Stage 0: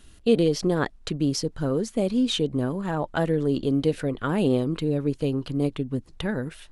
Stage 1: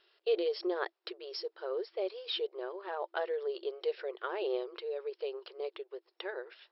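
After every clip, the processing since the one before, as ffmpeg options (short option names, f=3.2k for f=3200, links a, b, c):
-af "afftfilt=real='re*between(b*sr/4096,340,5500)':imag='im*between(b*sr/4096,340,5500)':win_size=4096:overlap=0.75,volume=-8dB"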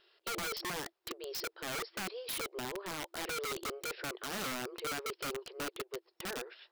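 -af "bass=f=250:g=7,treble=f=4k:g=1,alimiter=level_in=5dB:limit=-24dB:level=0:latency=1:release=19,volume=-5dB,aeval=exprs='(mod(50.1*val(0)+1,2)-1)/50.1':c=same,volume=1dB"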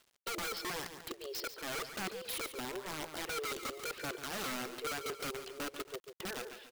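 -af "aecho=1:1:142|278:0.299|0.141,aphaser=in_gain=1:out_gain=1:delay=3.8:decay=0.28:speed=0.97:type=sinusoidal,acrusher=bits=9:mix=0:aa=0.000001,volume=-1.5dB"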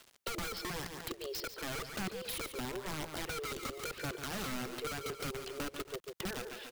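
-filter_complex "[0:a]acrossover=split=190[a][b];[b]acompressor=threshold=-51dB:ratio=3[c];[a][c]amix=inputs=2:normalize=0,volume=9.5dB"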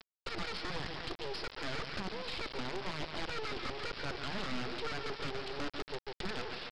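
-af "aresample=11025,acrusher=bits=5:dc=4:mix=0:aa=0.000001,aresample=44100,asoftclip=type=tanh:threshold=-35.5dB,volume=7dB"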